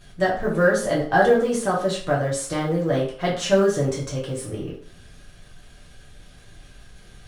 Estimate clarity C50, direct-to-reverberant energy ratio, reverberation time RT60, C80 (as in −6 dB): 6.0 dB, −6.0 dB, 0.45 s, 10.5 dB